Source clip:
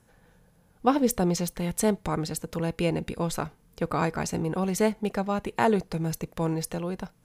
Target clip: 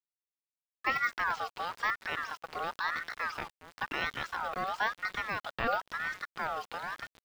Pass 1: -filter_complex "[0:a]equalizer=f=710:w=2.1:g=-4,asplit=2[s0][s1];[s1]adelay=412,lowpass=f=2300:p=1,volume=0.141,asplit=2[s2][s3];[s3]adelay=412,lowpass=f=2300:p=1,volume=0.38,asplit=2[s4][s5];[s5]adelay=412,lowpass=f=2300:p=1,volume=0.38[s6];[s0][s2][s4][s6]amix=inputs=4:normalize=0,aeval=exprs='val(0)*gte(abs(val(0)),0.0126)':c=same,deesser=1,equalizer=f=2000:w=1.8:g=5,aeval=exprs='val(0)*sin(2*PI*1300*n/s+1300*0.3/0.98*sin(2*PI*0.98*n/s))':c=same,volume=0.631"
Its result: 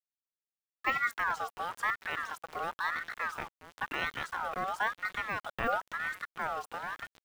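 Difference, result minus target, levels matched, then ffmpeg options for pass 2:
4 kHz band -2.5 dB
-filter_complex "[0:a]lowpass=f=3600:t=q:w=4.2,equalizer=f=710:w=2.1:g=-4,asplit=2[s0][s1];[s1]adelay=412,lowpass=f=2300:p=1,volume=0.141,asplit=2[s2][s3];[s3]adelay=412,lowpass=f=2300:p=1,volume=0.38,asplit=2[s4][s5];[s5]adelay=412,lowpass=f=2300:p=1,volume=0.38[s6];[s0][s2][s4][s6]amix=inputs=4:normalize=0,aeval=exprs='val(0)*gte(abs(val(0)),0.0126)':c=same,deesser=1,equalizer=f=2000:w=1.8:g=5,aeval=exprs='val(0)*sin(2*PI*1300*n/s+1300*0.3/0.98*sin(2*PI*0.98*n/s))':c=same,volume=0.631"

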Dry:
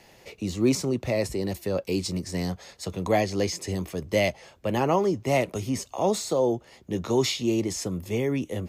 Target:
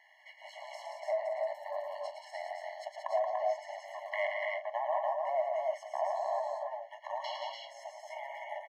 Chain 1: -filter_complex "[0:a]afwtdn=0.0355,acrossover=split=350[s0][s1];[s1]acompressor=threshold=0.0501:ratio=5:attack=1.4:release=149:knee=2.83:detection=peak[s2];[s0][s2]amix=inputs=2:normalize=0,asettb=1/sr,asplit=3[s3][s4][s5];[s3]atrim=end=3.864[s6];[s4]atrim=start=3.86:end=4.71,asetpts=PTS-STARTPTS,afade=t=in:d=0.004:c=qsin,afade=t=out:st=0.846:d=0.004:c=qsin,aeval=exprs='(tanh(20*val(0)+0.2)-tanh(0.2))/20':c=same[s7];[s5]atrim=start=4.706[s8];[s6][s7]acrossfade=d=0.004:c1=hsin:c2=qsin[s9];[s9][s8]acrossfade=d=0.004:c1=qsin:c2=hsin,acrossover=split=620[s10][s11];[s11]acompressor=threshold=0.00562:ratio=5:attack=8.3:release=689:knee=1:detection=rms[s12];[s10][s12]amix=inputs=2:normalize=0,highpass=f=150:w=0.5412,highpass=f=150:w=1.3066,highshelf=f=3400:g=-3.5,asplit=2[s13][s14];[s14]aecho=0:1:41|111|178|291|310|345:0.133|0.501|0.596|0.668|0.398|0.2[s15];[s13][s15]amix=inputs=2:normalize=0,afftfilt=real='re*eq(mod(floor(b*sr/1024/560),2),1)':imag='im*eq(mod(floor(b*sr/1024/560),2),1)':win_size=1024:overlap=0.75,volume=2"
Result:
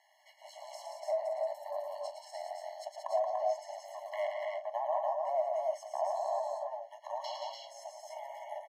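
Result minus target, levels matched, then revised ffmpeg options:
2 kHz band -9.5 dB; 8 kHz band +5.5 dB
-filter_complex "[0:a]afwtdn=0.0355,acrossover=split=350[s0][s1];[s1]acompressor=threshold=0.0501:ratio=5:attack=1.4:release=149:knee=2.83:detection=peak[s2];[s0][s2]amix=inputs=2:normalize=0,asettb=1/sr,asplit=3[s3][s4][s5];[s3]atrim=end=3.864[s6];[s4]atrim=start=3.86:end=4.71,asetpts=PTS-STARTPTS,afade=t=in:d=0.004:c=qsin,afade=t=out:st=0.846:d=0.004:c=qsin,aeval=exprs='(tanh(20*val(0)+0.2)-tanh(0.2))/20':c=same[s7];[s5]atrim=start=4.706[s8];[s6][s7]acrossfade=d=0.004:c1=hsin:c2=qsin[s9];[s9][s8]acrossfade=d=0.004:c1=qsin:c2=hsin,acrossover=split=620[s10][s11];[s11]acompressor=threshold=0.00562:ratio=5:attack=8.3:release=689:knee=1:detection=rms,equalizer=f=2100:t=o:w=1.5:g=13[s12];[s10][s12]amix=inputs=2:normalize=0,highpass=f=150:w=0.5412,highpass=f=150:w=1.3066,highshelf=f=3400:g=-12,asplit=2[s13][s14];[s14]aecho=0:1:41|111|178|291|310|345:0.133|0.501|0.596|0.668|0.398|0.2[s15];[s13][s15]amix=inputs=2:normalize=0,afftfilt=real='re*eq(mod(floor(b*sr/1024/560),2),1)':imag='im*eq(mod(floor(b*sr/1024/560),2),1)':win_size=1024:overlap=0.75,volume=2"

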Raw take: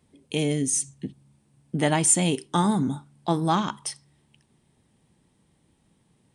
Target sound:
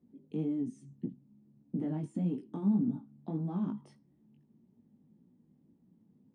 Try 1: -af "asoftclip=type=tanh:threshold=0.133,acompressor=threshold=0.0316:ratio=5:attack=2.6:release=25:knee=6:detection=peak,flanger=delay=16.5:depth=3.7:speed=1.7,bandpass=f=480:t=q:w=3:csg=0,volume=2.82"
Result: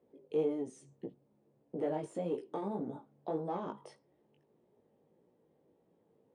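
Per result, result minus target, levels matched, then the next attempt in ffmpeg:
500 Hz band +13.0 dB; saturation: distortion +9 dB
-af "asoftclip=type=tanh:threshold=0.133,acompressor=threshold=0.0316:ratio=5:attack=2.6:release=25:knee=6:detection=peak,flanger=delay=16.5:depth=3.7:speed=1.7,bandpass=f=230:t=q:w=3:csg=0,volume=2.82"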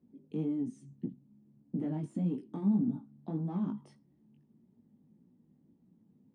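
saturation: distortion +9 dB
-af "asoftclip=type=tanh:threshold=0.316,acompressor=threshold=0.0316:ratio=5:attack=2.6:release=25:knee=6:detection=peak,flanger=delay=16.5:depth=3.7:speed=1.7,bandpass=f=230:t=q:w=3:csg=0,volume=2.82"

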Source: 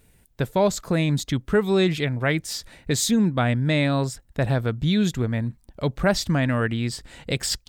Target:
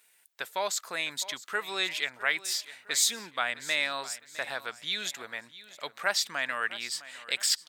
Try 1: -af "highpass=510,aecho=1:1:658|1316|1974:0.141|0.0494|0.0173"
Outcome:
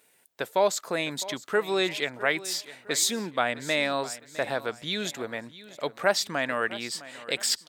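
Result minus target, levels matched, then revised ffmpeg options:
500 Hz band +9.0 dB
-af "highpass=1200,aecho=1:1:658|1316|1974:0.141|0.0494|0.0173"

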